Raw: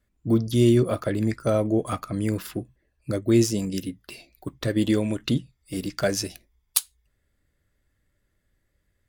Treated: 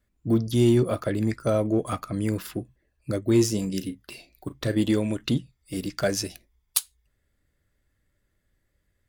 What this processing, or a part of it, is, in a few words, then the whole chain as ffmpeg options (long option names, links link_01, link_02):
parallel distortion: -filter_complex "[0:a]asettb=1/sr,asplit=3[link_01][link_02][link_03];[link_01]atrim=end=3.254[link_04];[link_02]atrim=start=3.25:end=4.81,asetpts=PTS-STARTPTS,afade=type=in:duration=0.004:curve=qsin,afade=type=out:start_time=1.556:duration=0.004:curve=qsin,asplit=2[link_05][link_06];[link_06]adelay=37,volume=-12.5dB[link_07];[link_05][link_07]amix=inputs=2:normalize=0,atrim=end_sample=68796[link_08];[link_03]atrim=start=4.806[link_09];[link_04][link_08]acrossfade=duration=0.004:curve1=hsin:curve2=qsin[link_10];[link_10][link_09]acrossfade=duration=0.004:curve1=qsin:curve2=hsin,asplit=2[link_11][link_12];[link_12]asoftclip=type=hard:threshold=-16.5dB,volume=-10.5dB[link_13];[link_11][link_13]amix=inputs=2:normalize=0,volume=-3dB"